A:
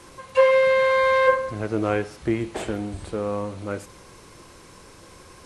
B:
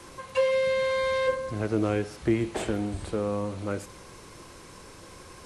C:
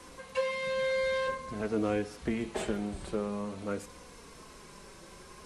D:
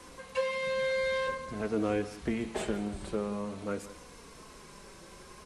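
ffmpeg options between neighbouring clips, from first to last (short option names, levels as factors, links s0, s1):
-filter_complex "[0:a]acrossover=split=420|3000[s0][s1][s2];[s1]acompressor=threshold=0.0282:ratio=6[s3];[s0][s3][s2]amix=inputs=3:normalize=0"
-af "flanger=delay=4:depth=1.3:regen=-25:speed=0.5:shape=triangular"
-af "aecho=1:1:174:0.15"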